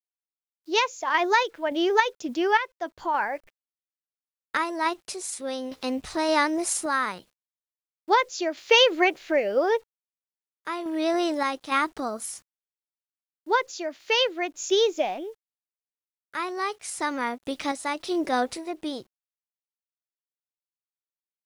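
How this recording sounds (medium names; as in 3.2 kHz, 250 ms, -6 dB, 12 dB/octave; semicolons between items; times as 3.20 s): a quantiser's noise floor 10-bit, dither none; random-step tremolo, depth 65%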